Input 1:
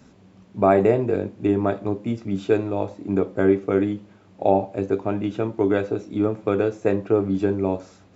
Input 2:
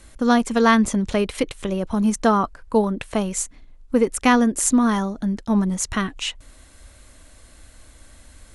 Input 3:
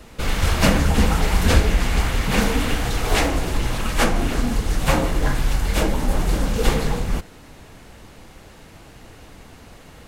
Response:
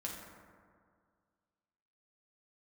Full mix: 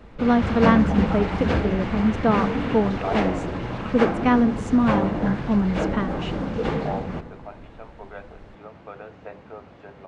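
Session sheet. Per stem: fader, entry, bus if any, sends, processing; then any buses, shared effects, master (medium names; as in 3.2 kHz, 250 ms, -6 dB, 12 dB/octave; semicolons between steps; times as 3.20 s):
-6.0 dB, 2.40 s, no send, inverse Chebyshev high-pass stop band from 190 Hz, stop band 60 dB
-0.5 dB, 0.00 s, no send, none
-2.0 dB, 0.00 s, send -8 dB, high-pass 110 Hz 12 dB/octave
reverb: on, RT60 2.0 s, pre-delay 5 ms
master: tape spacing loss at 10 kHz 34 dB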